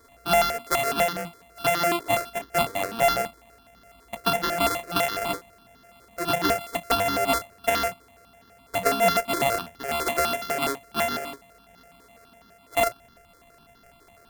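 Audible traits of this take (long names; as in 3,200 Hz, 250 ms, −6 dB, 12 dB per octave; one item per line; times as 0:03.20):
a buzz of ramps at a fixed pitch in blocks of 64 samples
notches that jump at a steady rate 12 Hz 740–2,400 Hz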